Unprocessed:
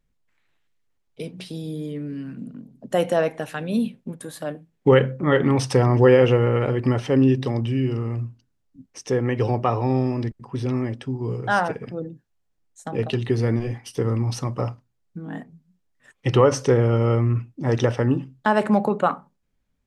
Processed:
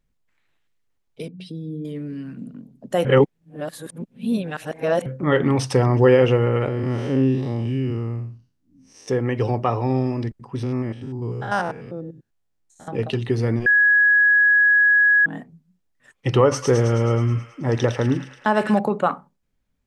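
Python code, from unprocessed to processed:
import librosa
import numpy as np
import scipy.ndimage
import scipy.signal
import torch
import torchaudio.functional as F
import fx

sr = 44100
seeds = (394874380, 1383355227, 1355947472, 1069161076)

y = fx.spec_expand(x, sr, power=1.6, at=(1.28, 1.85))
y = fx.spec_blur(y, sr, span_ms=157.0, at=(6.68, 9.08))
y = fx.spec_steps(y, sr, hold_ms=100, at=(10.63, 12.88))
y = fx.echo_wet_highpass(y, sr, ms=107, feedback_pct=65, hz=1800.0, wet_db=-4.0, at=(16.41, 18.79))
y = fx.edit(y, sr, fx.reverse_span(start_s=3.05, length_s=2.01),
    fx.bleep(start_s=13.66, length_s=1.6, hz=1670.0, db=-12.0), tone=tone)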